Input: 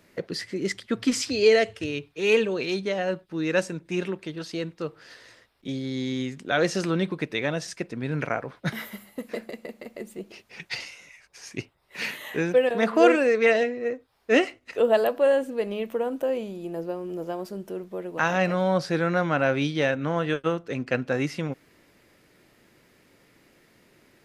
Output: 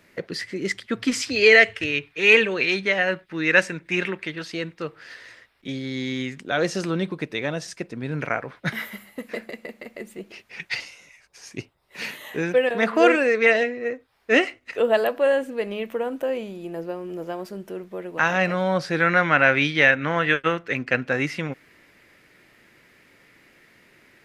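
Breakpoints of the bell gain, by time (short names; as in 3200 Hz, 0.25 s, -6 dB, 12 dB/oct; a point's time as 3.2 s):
bell 2000 Hz 1.3 oct
+5.5 dB
from 1.36 s +15 dB
from 4.4 s +8.5 dB
from 6.41 s 0 dB
from 8.25 s +6.5 dB
from 10.8 s -1.5 dB
from 12.43 s +6 dB
from 19 s +15 dB
from 20.77 s +9 dB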